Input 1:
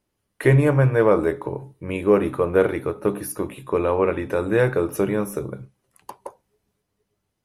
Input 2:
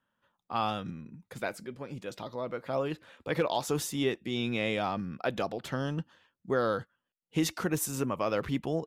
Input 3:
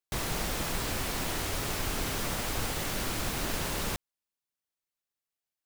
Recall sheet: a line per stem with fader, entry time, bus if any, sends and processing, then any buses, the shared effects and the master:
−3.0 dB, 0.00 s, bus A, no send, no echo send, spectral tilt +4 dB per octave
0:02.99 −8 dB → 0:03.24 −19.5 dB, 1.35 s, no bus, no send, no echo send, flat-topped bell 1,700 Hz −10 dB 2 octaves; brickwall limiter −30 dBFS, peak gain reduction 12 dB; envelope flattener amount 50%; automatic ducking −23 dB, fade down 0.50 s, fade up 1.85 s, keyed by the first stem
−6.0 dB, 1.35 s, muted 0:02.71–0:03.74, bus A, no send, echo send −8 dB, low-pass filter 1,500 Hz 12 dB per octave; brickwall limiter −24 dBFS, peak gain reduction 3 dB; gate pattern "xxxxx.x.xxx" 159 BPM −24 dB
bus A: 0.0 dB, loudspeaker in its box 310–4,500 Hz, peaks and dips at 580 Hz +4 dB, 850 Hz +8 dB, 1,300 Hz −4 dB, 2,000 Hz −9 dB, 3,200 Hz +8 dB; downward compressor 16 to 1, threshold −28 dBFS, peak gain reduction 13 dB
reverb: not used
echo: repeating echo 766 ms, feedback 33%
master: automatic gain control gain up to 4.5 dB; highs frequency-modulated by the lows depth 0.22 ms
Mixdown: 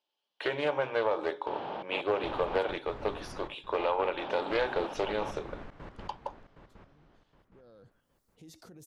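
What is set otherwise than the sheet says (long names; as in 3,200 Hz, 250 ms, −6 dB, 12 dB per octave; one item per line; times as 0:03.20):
stem 1 −3.0 dB → −9.0 dB
stem 2: entry 1.35 s → 1.05 s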